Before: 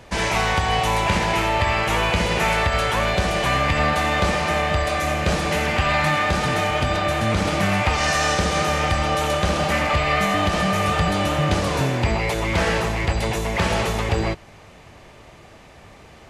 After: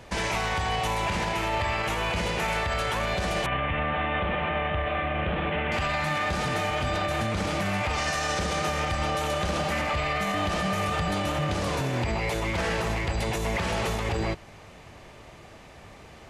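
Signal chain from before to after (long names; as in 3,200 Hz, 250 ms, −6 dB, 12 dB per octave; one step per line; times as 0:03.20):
brickwall limiter −17 dBFS, peak gain reduction 9.5 dB
0:03.46–0:05.72: Butterworth low-pass 3,400 Hz 72 dB per octave
level −2 dB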